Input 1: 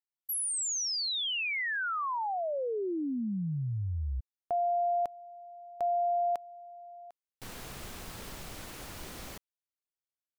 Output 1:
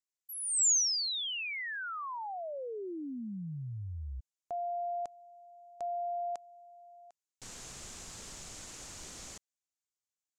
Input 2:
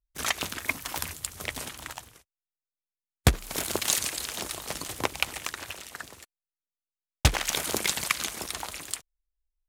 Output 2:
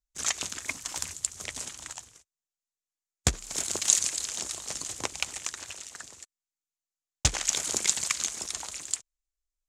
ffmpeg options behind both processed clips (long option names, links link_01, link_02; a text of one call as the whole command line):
ffmpeg -i in.wav -af "lowpass=frequency=7100:width_type=q:width=3.2,highshelf=frequency=5100:gain=6.5,volume=-7dB" out.wav